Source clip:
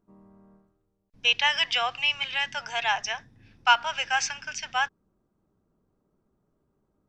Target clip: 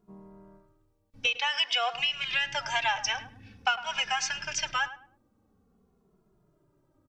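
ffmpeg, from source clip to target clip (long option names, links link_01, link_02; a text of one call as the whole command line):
ffmpeg -i in.wav -filter_complex "[0:a]asettb=1/sr,asplit=3[link_01][link_02][link_03];[link_01]atrim=end=1.264[link_04];[link_02]atrim=start=1.26:end=1.94,asetpts=PTS-STARTPTS,afade=type=in:duration=0.004:curve=qsin,afade=type=out:start_time=0.676:duration=0.004:curve=qsin,highpass=frequency=310:width=0.5412,highpass=frequency=310:width=1.3066[link_05];[link_03]atrim=start=1.936[link_06];[link_04][link_05]acrossfade=duration=0.004:curve1=hsin:curve2=qsin[link_07];[link_07][link_06]acrossfade=duration=0.004:curve1=qsin:curve2=hsin,acompressor=threshold=-28dB:ratio=16,asplit=2[link_08][link_09];[link_09]adelay=105,lowpass=frequency=1800:poles=1,volume=-13dB,asplit=2[link_10][link_11];[link_11]adelay=105,lowpass=frequency=1800:poles=1,volume=0.27,asplit=2[link_12][link_13];[link_13]adelay=105,lowpass=frequency=1800:poles=1,volume=0.27[link_14];[link_08][link_10][link_12][link_14]amix=inputs=4:normalize=0,asplit=2[link_15][link_16];[link_16]adelay=2.4,afreqshift=-0.49[link_17];[link_15][link_17]amix=inputs=2:normalize=1,volume=7.5dB" out.wav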